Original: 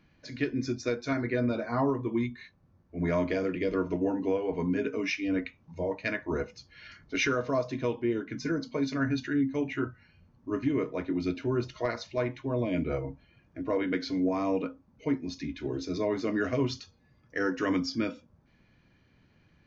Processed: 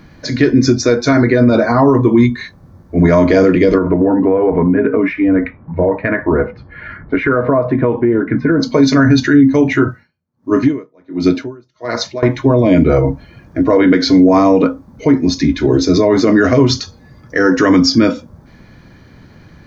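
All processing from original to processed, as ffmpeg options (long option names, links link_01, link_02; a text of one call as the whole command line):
ffmpeg -i in.wav -filter_complex "[0:a]asettb=1/sr,asplit=3[link_01][link_02][link_03];[link_01]atrim=end=3.784[link_04];[link_02]atrim=start=3.78:end=8.6,asetpts=PTS-STARTPTS,afade=type=in:duration=0.004:curve=qsin,afade=type=out:start_time=4.816:duration=0.004:curve=qsin,acompressor=threshold=-31dB:ratio=6:attack=3.2:release=140:knee=1:detection=peak,lowpass=frequency=2100:width=0.5412,lowpass=frequency=2100:width=1.3066[link_05];[link_03]atrim=start=8.596[link_06];[link_04][link_05]acrossfade=duration=0.004:curve1=hsin:curve2=qsin[link_07];[link_07][link_06]acrossfade=duration=0.004:curve1=qsin:curve2=hsin,asettb=1/sr,asplit=3[link_08][link_09][link_10];[link_08]atrim=end=9.884[link_11];[link_09]atrim=start=9.88:end=12.23,asetpts=PTS-STARTPTS,afade=type=in:duration=0.004:curve=qsin,afade=type=out:start_time=2.346:duration=0.004:curve=qsin,highpass=120,aeval=exprs='val(0)*pow(10,-38*(0.5-0.5*cos(2*PI*1.4*n/s))/20)':channel_layout=same[link_12];[link_10]atrim=start=12.226[link_13];[link_11][link_12]acrossfade=duration=0.004:curve1=hsin:curve2=qsin[link_14];[link_14][link_13]acrossfade=duration=0.004:curve1=qsin:curve2=hsin,equalizer=frequency=2700:width=2.6:gain=-9.5,alimiter=level_in=24dB:limit=-1dB:release=50:level=0:latency=1,volume=-1dB" out.wav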